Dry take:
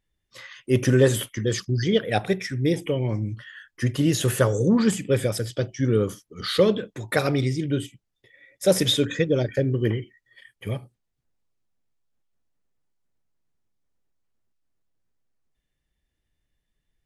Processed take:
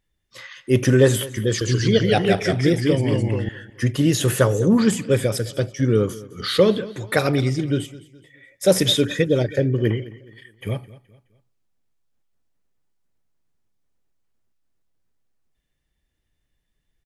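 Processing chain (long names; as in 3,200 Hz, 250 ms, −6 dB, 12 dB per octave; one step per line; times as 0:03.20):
0:01.48–0:03.49: delay with pitch and tempo change per echo 130 ms, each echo −1 semitone, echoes 2
repeating echo 211 ms, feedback 38%, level −19 dB
level +3 dB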